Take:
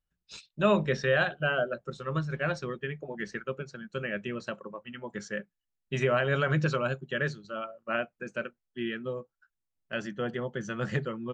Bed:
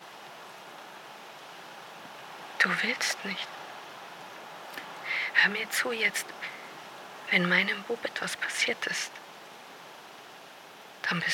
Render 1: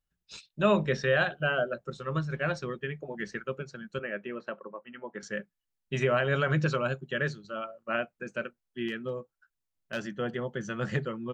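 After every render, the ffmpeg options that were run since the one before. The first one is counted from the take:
ffmpeg -i in.wav -filter_complex "[0:a]asettb=1/sr,asplit=3[link_01][link_02][link_03];[link_01]atrim=end=3.994[link_04];[link_02]atrim=start=3.99:end=5.23,asetpts=PTS-STARTPTS,afade=type=in:duration=0.004:curve=qsin,afade=type=out:start_time=1.236:duration=0.004:curve=qsin,highpass=270,lowpass=2100[link_05];[link_03]atrim=start=5.226[link_06];[link_04][link_05]acrossfade=duration=0.004:curve1=hsin:curve2=qsin[link_07];[link_07][link_06]acrossfade=duration=0.004:curve1=qsin:curve2=hsin,asettb=1/sr,asplit=3[link_08][link_09][link_10];[link_08]atrim=end=8.884[link_11];[link_09]atrim=start=8.88:end=10.09,asetpts=PTS-STARTPTS,afade=type=in:duration=0.004:curve=qsin,afade=type=out:start_time=1.206:duration=0.004:curve=qsin,asoftclip=type=hard:threshold=-25.5dB[link_12];[link_10]atrim=start=10.086[link_13];[link_11][link_12]acrossfade=duration=0.004:curve1=hsin:curve2=qsin[link_14];[link_14][link_13]acrossfade=duration=0.004:curve1=qsin:curve2=hsin" out.wav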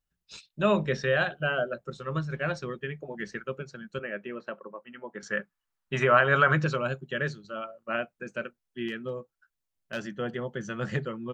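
ffmpeg -i in.wav -filter_complex "[0:a]asettb=1/sr,asplit=3[link_01][link_02][link_03];[link_01]atrim=end=5.264[link_04];[link_02]atrim=start=5.26:end=6.64,asetpts=PTS-STARTPTS,afade=type=in:duration=0.004:curve=qsin,afade=type=out:start_time=1.376:duration=0.004:curve=qsin,equalizer=frequency=1200:width=1:gain=11[link_05];[link_03]atrim=start=6.636[link_06];[link_04][link_05]acrossfade=duration=0.004:curve1=hsin:curve2=qsin[link_07];[link_07][link_06]acrossfade=duration=0.004:curve1=qsin:curve2=hsin" out.wav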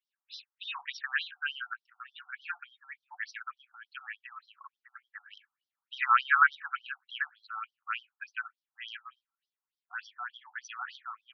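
ffmpeg -i in.wav -filter_complex "[0:a]asplit=2[link_01][link_02];[link_02]asoftclip=type=tanh:threshold=-19.5dB,volume=-9.5dB[link_03];[link_01][link_03]amix=inputs=2:normalize=0,afftfilt=real='re*between(b*sr/1024,980*pow(4400/980,0.5+0.5*sin(2*PI*3.4*pts/sr))/1.41,980*pow(4400/980,0.5+0.5*sin(2*PI*3.4*pts/sr))*1.41)':imag='im*between(b*sr/1024,980*pow(4400/980,0.5+0.5*sin(2*PI*3.4*pts/sr))/1.41,980*pow(4400/980,0.5+0.5*sin(2*PI*3.4*pts/sr))*1.41)':win_size=1024:overlap=0.75" out.wav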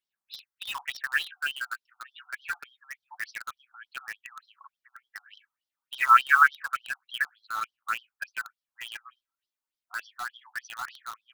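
ffmpeg -i in.wav -filter_complex "[0:a]asplit=2[link_01][link_02];[link_02]acrusher=bits=5:mix=0:aa=0.000001,volume=-4dB[link_03];[link_01][link_03]amix=inputs=2:normalize=0,aphaser=in_gain=1:out_gain=1:delay=3.3:decay=0.3:speed=0.26:type=sinusoidal" out.wav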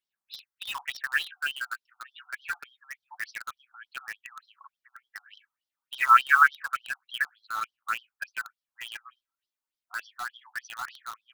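ffmpeg -i in.wav -af anull out.wav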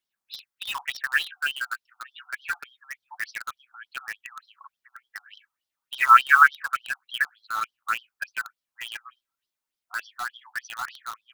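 ffmpeg -i in.wav -af "volume=3.5dB" out.wav

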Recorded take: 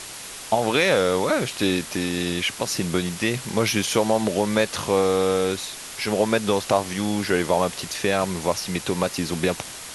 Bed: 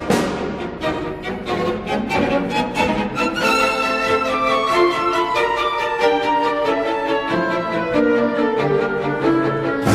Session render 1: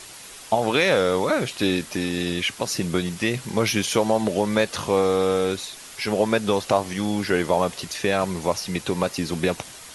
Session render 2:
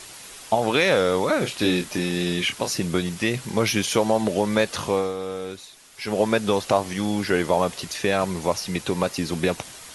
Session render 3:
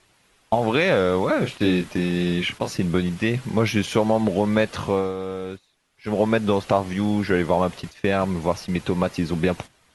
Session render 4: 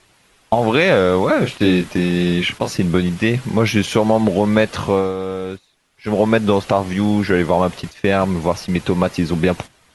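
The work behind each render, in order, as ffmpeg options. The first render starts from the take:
ffmpeg -i in.wav -af "afftdn=noise_reduction=6:noise_floor=-37" out.wav
ffmpeg -i in.wav -filter_complex "[0:a]asettb=1/sr,asplit=3[link_01][link_02][link_03];[link_01]atrim=end=1.384[link_04];[link_02]atrim=start=1.38:end=2.71,asetpts=PTS-STARTPTS,afade=type=in:duration=0.004:curve=qsin,afade=type=out:start_time=1.326:duration=0.004:curve=qsin,asplit=2[link_05][link_06];[link_06]adelay=28,volume=-6.5dB[link_07];[link_05][link_07]amix=inputs=2:normalize=0,atrim=end_sample=58653[link_08];[link_03]atrim=start=2.706[link_09];[link_04][link_08]acrossfade=duration=0.004:curve1=hsin:curve2=qsin[link_10];[link_10][link_09]acrossfade=duration=0.004:curve1=qsin:curve2=hsin,asplit=3[link_11][link_12][link_13];[link_11]atrim=end=5.14,asetpts=PTS-STARTPTS,afade=type=out:start_time=4.86:duration=0.28:silence=0.334965[link_14];[link_12]atrim=start=5.14:end=5.93,asetpts=PTS-STARTPTS,volume=-9.5dB[link_15];[link_13]atrim=start=5.93,asetpts=PTS-STARTPTS,afade=type=in:duration=0.28:silence=0.334965[link_16];[link_14][link_15][link_16]concat=n=3:v=0:a=1" out.wav
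ffmpeg -i in.wav -af "bass=frequency=250:gain=5,treble=frequency=4000:gain=-10,agate=range=-15dB:threshold=-33dB:ratio=16:detection=peak" out.wav
ffmpeg -i in.wav -af "volume=5.5dB,alimiter=limit=-3dB:level=0:latency=1" out.wav

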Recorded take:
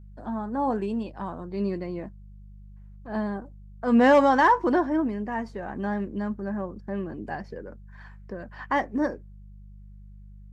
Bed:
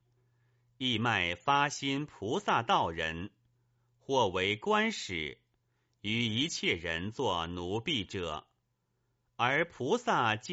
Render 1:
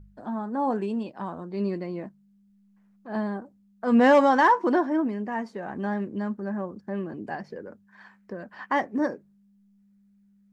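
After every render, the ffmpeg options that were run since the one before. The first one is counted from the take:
ffmpeg -i in.wav -af "bandreject=frequency=50:width_type=h:width=4,bandreject=frequency=100:width_type=h:width=4,bandreject=frequency=150:width_type=h:width=4" out.wav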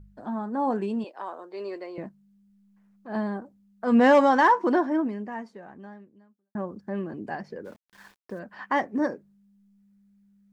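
ffmpeg -i in.wav -filter_complex "[0:a]asettb=1/sr,asplit=3[link_01][link_02][link_03];[link_01]atrim=end=1.044[link_04];[link_02]atrim=start=1.04:end=1.98,asetpts=PTS-STARTPTS,afade=type=in:duration=0.004:curve=qsin,afade=type=out:start_time=0.936:duration=0.004:curve=qsin,highpass=frequency=390:width=0.5412,highpass=frequency=390:width=1.3066[link_05];[link_03]atrim=start=1.976[link_06];[link_04][link_05]acrossfade=duration=0.004:curve1=hsin:curve2=qsin[link_07];[link_07][link_06]acrossfade=duration=0.004:curve1=qsin:curve2=hsin,asplit=3[link_08][link_09][link_10];[link_08]afade=type=out:start_time=7.64:duration=0.02[link_11];[link_09]aeval=exprs='val(0)*gte(abs(val(0)),0.00266)':channel_layout=same,afade=type=in:start_time=7.64:duration=0.02,afade=type=out:start_time=8.38:duration=0.02[link_12];[link_10]afade=type=in:start_time=8.38:duration=0.02[link_13];[link_11][link_12][link_13]amix=inputs=3:normalize=0,asplit=2[link_14][link_15];[link_14]atrim=end=6.55,asetpts=PTS-STARTPTS,afade=type=out:start_time=4.95:duration=1.6:curve=qua[link_16];[link_15]atrim=start=6.55,asetpts=PTS-STARTPTS,afade=type=in:duration=0.004:curve=hsin[link_17];[link_16][link_17]concat=n=2:v=0:a=1" out.wav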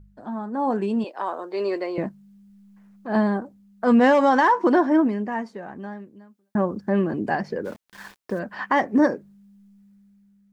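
ffmpeg -i in.wav -af "dynaudnorm=framelen=300:gausssize=7:maxgain=10dB,alimiter=limit=-10dB:level=0:latency=1:release=160" out.wav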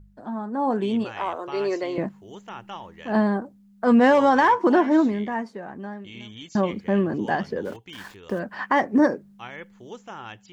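ffmpeg -i in.wav -i bed.wav -filter_complex "[1:a]volume=-10dB[link_01];[0:a][link_01]amix=inputs=2:normalize=0" out.wav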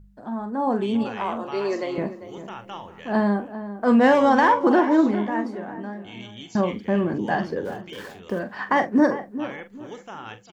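ffmpeg -i in.wav -filter_complex "[0:a]asplit=2[link_01][link_02];[link_02]adelay=44,volume=-10.5dB[link_03];[link_01][link_03]amix=inputs=2:normalize=0,asplit=2[link_04][link_05];[link_05]adelay=397,lowpass=frequency=1700:poles=1,volume=-12dB,asplit=2[link_06][link_07];[link_07]adelay=397,lowpass=frequency=1700:poles=1,volume=0.29,asplit=2[link_08][link_09];[link_09]adelay=397,lowpass=frequency=1700:poles=1,volume=0.29[link_10];[link_04][link_06][link_08][link_10]amix=inputs=4:normalize=0" out.wav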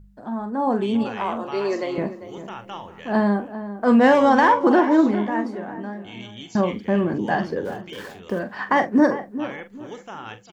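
ffmpeg -i in.wav -af "volume=1.5dB" out.wav

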